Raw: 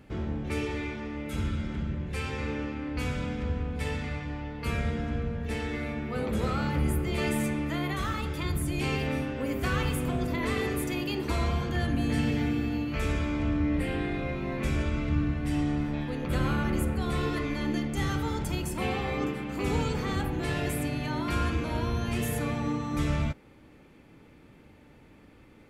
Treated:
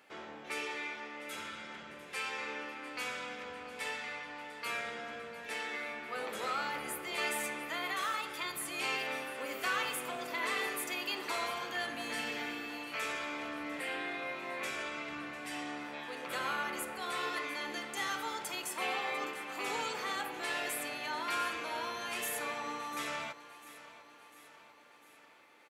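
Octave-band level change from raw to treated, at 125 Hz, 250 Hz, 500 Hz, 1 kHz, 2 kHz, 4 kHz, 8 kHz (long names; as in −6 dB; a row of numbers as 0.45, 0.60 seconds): −30.5, −17.0, −8.0, −1.5, 0.0, 0.0, 0.0 decibels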